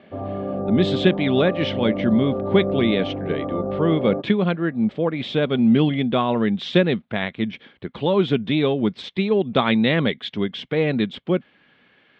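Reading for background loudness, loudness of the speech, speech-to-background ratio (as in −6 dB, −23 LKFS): −27.0 LKFS, −21.5 LKFS, 5.5 dB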